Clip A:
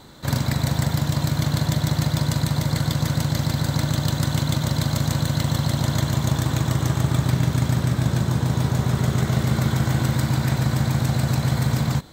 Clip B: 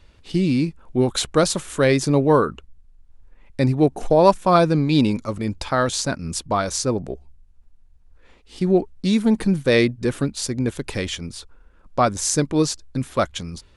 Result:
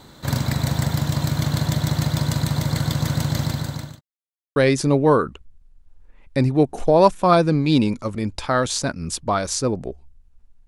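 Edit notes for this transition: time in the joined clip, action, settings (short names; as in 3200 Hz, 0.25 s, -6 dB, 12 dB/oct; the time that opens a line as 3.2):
clip A
3.42–4.01 fade out linear
4.01–4.56 mute
4.56 switch to clip B from 1.79 s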